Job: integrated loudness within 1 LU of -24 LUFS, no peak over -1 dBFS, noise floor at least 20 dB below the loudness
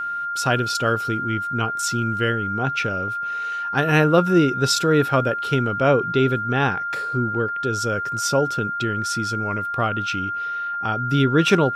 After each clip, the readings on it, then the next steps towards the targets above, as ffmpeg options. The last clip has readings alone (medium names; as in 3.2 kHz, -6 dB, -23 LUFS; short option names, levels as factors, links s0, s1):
steady tone 1.4 kHz; tone level -24 dBFS; loudness -21.0 LUFS; peak level -4.0 dBFS; loudness target -24.0 LUFS
-> -af "bandreject=f=1400:w=30"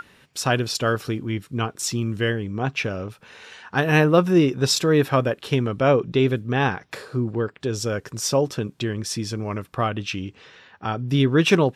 steady tone not found; loudness -22.5 LUFS; peak level -4.5 dBFS; loudness target -24.0 LUFS
-> -af "volume=0.841"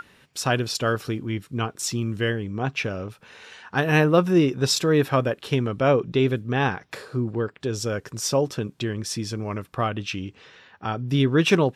loudness -24.0 LUFS; peak level -6.0 dBFS; noise floor -59 dBFS